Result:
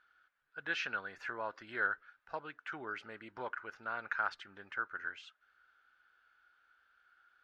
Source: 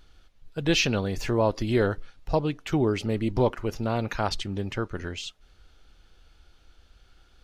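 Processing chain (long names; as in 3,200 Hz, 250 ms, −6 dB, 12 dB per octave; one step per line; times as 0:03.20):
resonant band-pass 1,500 Hz, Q 6.2
level +4 dB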